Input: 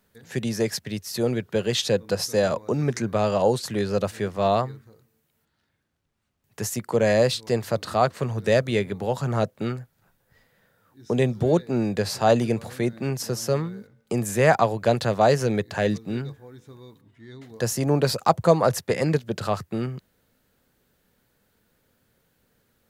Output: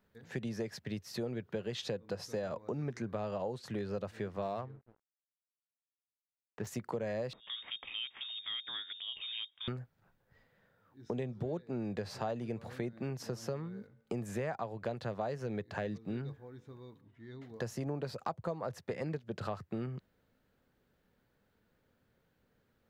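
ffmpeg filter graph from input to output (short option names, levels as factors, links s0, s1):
-filter_complex "[0:a]asettb=1/sr,asplit=3[s0][s1][s2];[s0]atrim=end=4.424[s3];[s1]atrim=start=4.42:end=6.67,asetpts=PTS-STARTPTS,afade=t=in:d=0.004:c=qsin,afade=t=out:st=2.246:d=0.004:c=qsin,bandreject=f=50:t=h:w=6,bandreject=f=100:t=h:w=6,bandreject=f=150:t=h:w=6,adynamicsmooth=sensitivity=4.5:basefreq=1300,aeval=exprs='sgn(val(0))*max(abs(val(0))-0.00237,0)':c=same[s4];[s2]atrim=start=6.666[s5];[s3][s4]acrossfade=d=0.004:c1=hsin:c2=qsin[s6];[s6][s5]acrossfade=d=0.004:c1=qsin:c2=hsin,asettb=1/sr,asplit=3[s7][s8][s9];[s7]atrim=end=7.334[s10];[s8]atrim=start=7.33:end=9.68,asetpts=PTS-STARTPTS,afade=t=in:d=0.004:c=qsin,afade=t=out:st=2.346:d=0.004:c=qsin,equalizer=f=680:t=o:w=1.1:g=5.5,acompressor=threshold=0.0251:ratio=2.5:attack=3.2:release=140:knee=1:detection=peak,lowpass=f=3200:t=q:w=0.5098,lowpass=f=3200:t=q:w=0.6013,lowpass=f=3200:t=q:w=0.9,lowpass=f=3200:t=q:w=2.563,afreqshift=-3800[s11];[s9]atrim=start=9.676[s12];[s10][s11]acrossfade=d=0.004:c1=hsin:c2=qsin[s13];[s13][s12]acrossfade=d=0.004:c1=qsin:c2=hsin,equalizer=f=11000:t=o:w=1.9:g=-14,acompressor=threshold=0.0355:ratio=6,volume=0.531"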